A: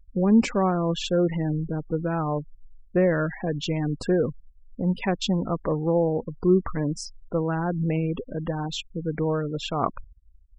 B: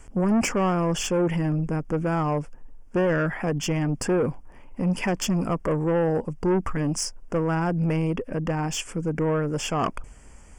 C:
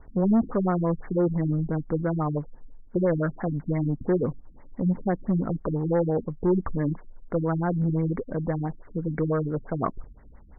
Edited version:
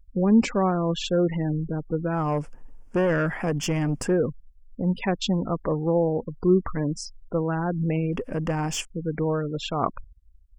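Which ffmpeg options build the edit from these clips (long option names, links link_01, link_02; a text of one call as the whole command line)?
ffmpeg -i take0.wav -i take1.wav -filter_complex "[1:a]asplit=2[link_01][link_02];[0:a]asplit=3[link_03][link_04][link_05];[link_03]atrim=end=2.35[link_06];[link_01]atrim=start=2.11:end=4.21[link_07];[link_04]atrim=start=3.97:end=8.132[link_08];[link_02]atrim=start=8.128:end=8.852[link_09];[link_05]atrim=start=8.848[link_10];[link_06][link_07]acrossfade=duration=0.24:curve1=tri:curve2=tri[link_11];[link_11][link_08]acrossfade=duration=0.24:curve1=tri:curve2=tri[link_12];[link_12][link_09]acrossfade=duration=0.004:curve1=hsin:curve2=hsin[link_13];[link_13][link_10]acrossfade=duration=0.004:curve1=hsin:curve2=hsin" out.wav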